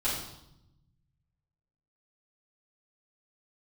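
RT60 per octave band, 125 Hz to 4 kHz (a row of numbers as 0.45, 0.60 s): 2.1, 1.4, 0.85, 0.80, 0.65, 0.75 s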